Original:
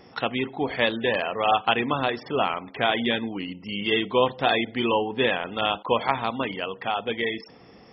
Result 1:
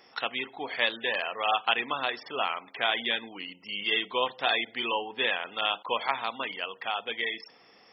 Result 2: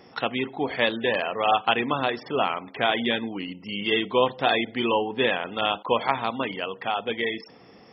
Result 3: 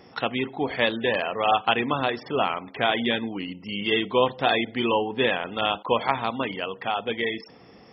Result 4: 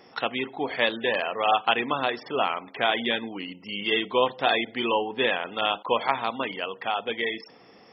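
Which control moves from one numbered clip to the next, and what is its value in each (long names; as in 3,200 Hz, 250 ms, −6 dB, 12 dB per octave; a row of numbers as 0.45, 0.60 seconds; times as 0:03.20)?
high-pass filter, corner frequency: 1,400, 120, 42, 360 Hertz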